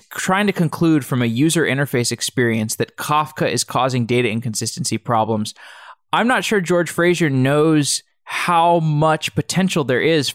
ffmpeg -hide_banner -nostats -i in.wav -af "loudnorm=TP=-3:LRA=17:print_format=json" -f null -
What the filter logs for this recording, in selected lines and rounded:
"input_i" : "-17.6",
"input_tp" : "-5.3",
"input_lra" : "2.8",
"input_thresh" : "-27.8",